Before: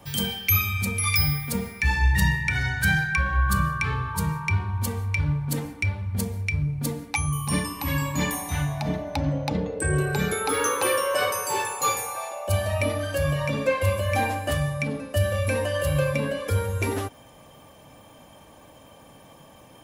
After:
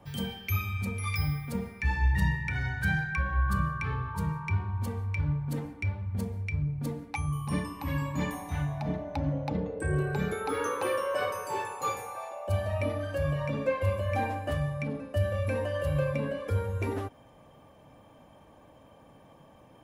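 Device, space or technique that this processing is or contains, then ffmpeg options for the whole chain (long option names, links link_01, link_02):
through cloth: -af "highshelf=frequency=2900:gain=-13.5,volume=-4.5dB"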